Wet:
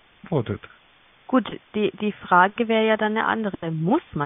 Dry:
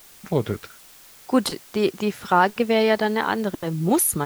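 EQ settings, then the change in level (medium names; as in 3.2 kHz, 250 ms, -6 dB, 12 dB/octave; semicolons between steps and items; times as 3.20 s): dynamic bell 1.3 kHz, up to +5 dB, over -35 dBFS, Q 2.6; brick-wall FIR low-pass 3.6 kHz; peaking EQ 420 Hz -2 dB; 0.0 dB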